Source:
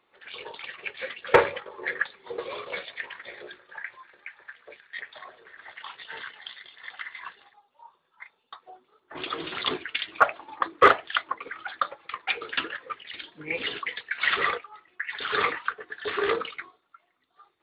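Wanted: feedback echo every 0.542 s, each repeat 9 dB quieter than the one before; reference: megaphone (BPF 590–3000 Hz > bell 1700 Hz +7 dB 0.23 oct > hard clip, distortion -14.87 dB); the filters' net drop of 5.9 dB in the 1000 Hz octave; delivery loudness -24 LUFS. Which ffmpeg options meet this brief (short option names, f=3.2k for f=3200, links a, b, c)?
-af "highpass=590,lowpass=3k,equalizer=f=1k:t=o:g=-8,equalizer=f=1.7k:t=o:w=0.23:g=7,aecho=1:1:542|1084|1626|2168:0.355|0.124|0.0435|0.0152,asoftclip=type=hard:threshold=-15.5dB,volume=8dB"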